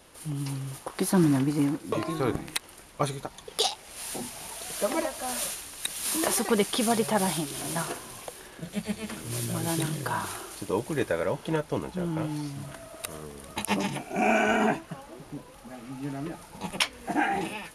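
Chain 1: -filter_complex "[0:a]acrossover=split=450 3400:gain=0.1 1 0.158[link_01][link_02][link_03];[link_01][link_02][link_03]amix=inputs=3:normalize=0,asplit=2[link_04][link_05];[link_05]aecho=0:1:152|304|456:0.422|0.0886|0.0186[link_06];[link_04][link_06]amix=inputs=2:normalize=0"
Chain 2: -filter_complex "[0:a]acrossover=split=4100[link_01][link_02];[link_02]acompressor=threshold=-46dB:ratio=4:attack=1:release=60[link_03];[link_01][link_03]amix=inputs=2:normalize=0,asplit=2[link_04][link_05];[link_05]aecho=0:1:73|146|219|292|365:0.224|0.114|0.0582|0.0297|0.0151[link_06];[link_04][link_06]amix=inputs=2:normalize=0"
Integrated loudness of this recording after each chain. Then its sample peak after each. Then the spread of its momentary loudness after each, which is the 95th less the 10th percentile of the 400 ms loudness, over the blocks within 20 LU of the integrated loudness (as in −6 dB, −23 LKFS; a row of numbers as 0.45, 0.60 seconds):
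−33.5, −30.0 LKFS; −10.5, −11.0 dBFS; 17, 16 LU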